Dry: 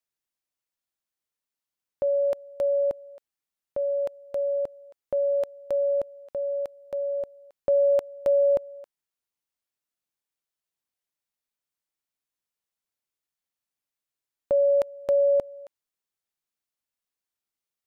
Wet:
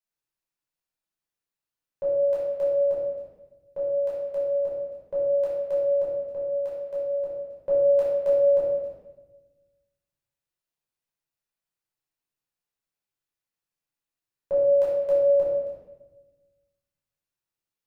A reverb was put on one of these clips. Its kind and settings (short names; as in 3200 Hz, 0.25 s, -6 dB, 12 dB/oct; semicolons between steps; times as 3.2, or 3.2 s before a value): shoebox room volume 620 m³, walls mixed, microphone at 5 m; gain -11 dB